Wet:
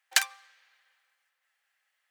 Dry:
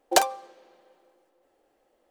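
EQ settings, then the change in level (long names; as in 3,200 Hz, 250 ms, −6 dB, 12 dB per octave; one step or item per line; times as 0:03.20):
four-pole ladder high-pass 1,500 Hz, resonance 45%
+7.5 dB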